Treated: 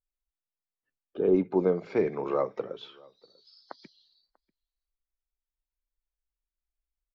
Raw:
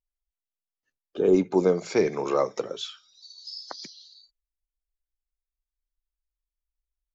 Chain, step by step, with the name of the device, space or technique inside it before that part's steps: shout across a valley (distance through air 380 m; echo from a far wall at 110 m, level -26 dB); trim -2.5 dB

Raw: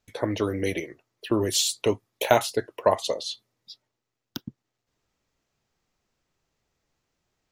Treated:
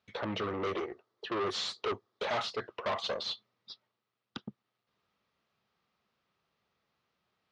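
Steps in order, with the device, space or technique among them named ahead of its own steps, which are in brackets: 0.53–2.28 s: fifteen-band graphic EQ 160 Hz -10 dB, 400 Hz +8 dB, 2.5 kHz -7 dB; guitar amplifier (valve stage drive 30 dB, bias 0.45; tone controls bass -4 dB, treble +11 dB; cabinet simulation 85–3700 Hz, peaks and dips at 200 Hz +6 dB, 300 Hz -5 dB, 1.2 kHz +7 dB)

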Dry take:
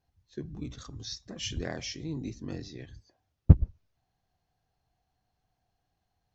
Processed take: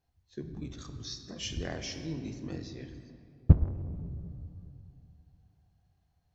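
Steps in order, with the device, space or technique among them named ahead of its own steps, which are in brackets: saturated reverb return (on a send at -6 dB: reverberation RT60 2.6 s, pre-delay 9 ms + saturation -26 dBFS, distortion -5 dB); on the sum: trim -2 dB

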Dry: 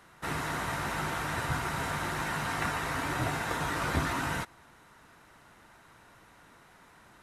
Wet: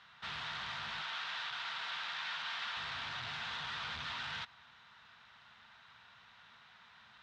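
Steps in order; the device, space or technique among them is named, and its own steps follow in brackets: scooped metal amplifier (valve stage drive 40 dB, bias 0.6; cabinet simulation 110–4200 Hz, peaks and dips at 230 Hz +10 dB, 560 Hz -4 dB, 2.1 kHz -3 dB, 3.5 kHz +5 dB; amplifier tone stack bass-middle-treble 10-0-10); 1.02–2.77 s: frequency weighting A; trim +8 dB

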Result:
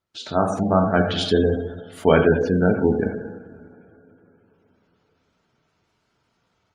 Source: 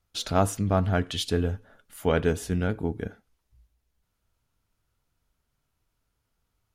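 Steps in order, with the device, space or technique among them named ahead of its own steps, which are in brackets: distance through air 64 m; tape echo 68 ms, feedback 61%, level -15 dB, low-pass 1.1 kHz; two-slope reverb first 0.95 s, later 3.5 s, from -19 dB, DRR 2.5 dB; 2.42–3.03 s: dynamic bell 500 Hz, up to +3 dB, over -47 dBFS, Q 4.5; noise-suppressed video call (high-pass 140 Hz 12 dB/octave; spectral gate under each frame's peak -25 dB strong; level rider gain up to 11.5 dB; Opus 32 kbps 48 kHz)

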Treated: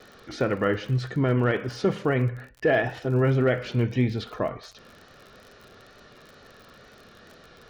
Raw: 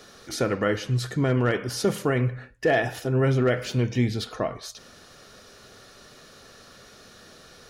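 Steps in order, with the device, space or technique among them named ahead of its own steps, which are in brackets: lo-fi chain (low-pass 3.3 kHz 12 dB/octave; wow and flutter; crackle 47 per s -38 dBFS)

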